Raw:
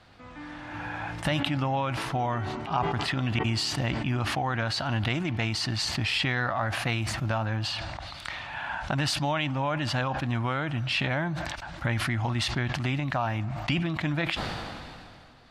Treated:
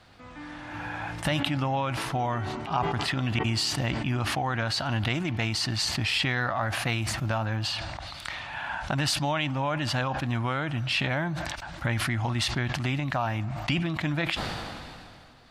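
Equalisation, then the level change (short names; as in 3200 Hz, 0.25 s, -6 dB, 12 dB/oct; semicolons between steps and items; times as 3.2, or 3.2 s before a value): high shelf 7400 Hz +6.5 dB; 0.0 dB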